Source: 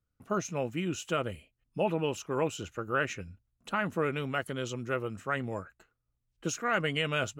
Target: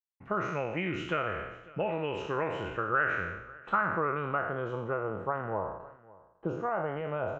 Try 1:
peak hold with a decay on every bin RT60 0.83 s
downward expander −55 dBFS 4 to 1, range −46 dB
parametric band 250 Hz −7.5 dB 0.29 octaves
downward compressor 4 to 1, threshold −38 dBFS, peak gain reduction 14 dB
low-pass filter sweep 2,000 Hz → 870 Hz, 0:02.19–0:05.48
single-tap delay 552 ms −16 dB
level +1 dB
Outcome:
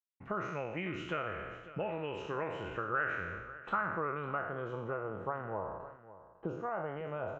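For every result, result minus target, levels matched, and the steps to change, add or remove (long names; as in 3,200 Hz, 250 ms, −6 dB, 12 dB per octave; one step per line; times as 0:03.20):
downward compressor: peak gain reduction +5.5 dB; echo-to-direct +6 dB
change: downward compressor 4 to 1, threshold −30.5 dBFS, peak gain reduction 8.5 dB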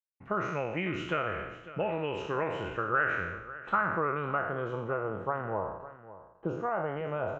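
echo-to-direct +6 dB
change: single-tap delay 552 ms −22 dB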